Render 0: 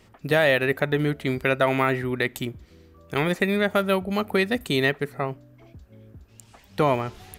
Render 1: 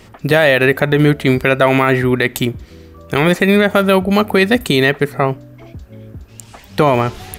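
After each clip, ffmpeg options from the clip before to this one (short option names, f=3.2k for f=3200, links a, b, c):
-af "alimiter=level_in=14dB:limit=-1dB:release=50:level=0:latency=1,volume=-1dB"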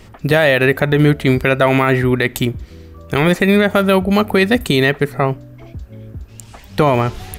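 -af "lowshelf=f=82:g=9,volume=-1.5dB"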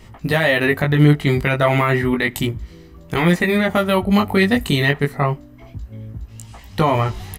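-af "aecho=1:1:1:0.3,flanger=delay=17.5:depth=3.7:speed=0.31"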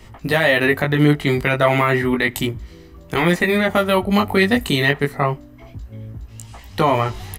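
-filter_complex "[0:a]equalizer=f=170:w=1.8:g=-4,acrossover=split=130[a][b];[a]alimiter=level_in=5.5dB:limit=-24dB:level=0:latency=1,volume=-5.5dB[c];[c][b]amix=inputs=2:normalize=0,volume=1dB"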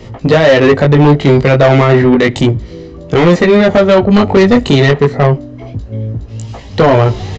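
-af "equalizer=f=125:t=o:w=1:g=10,equalizer=f=250:t=o:w=1:g=5,equalizer=f=500:t=o:w=1:g=12,equalizer=f=4k:t=o:w=1:g=4,acontrast=74,aresample=16000,aresample=44100,volume=-1.5dB"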